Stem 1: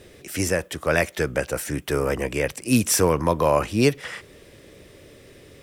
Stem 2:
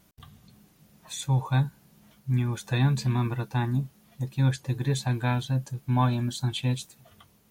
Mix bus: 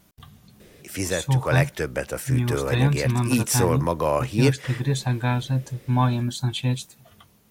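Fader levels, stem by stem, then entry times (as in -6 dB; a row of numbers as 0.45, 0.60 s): -3.0, +3.0 dB; 0.60, 0.00 s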